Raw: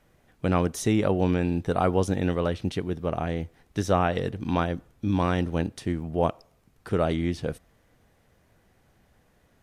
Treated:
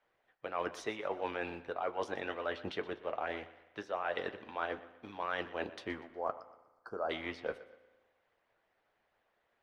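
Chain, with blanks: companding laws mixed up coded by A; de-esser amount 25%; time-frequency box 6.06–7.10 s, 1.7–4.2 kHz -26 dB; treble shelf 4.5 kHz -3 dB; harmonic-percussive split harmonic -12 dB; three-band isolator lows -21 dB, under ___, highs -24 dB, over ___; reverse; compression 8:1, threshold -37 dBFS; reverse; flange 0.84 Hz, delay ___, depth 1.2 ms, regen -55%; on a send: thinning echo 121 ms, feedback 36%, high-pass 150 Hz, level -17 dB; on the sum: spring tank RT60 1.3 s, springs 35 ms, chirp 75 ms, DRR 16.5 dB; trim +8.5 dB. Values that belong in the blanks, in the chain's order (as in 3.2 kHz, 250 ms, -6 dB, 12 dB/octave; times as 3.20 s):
450 Hz, 4.1 kHz, 8.5 ms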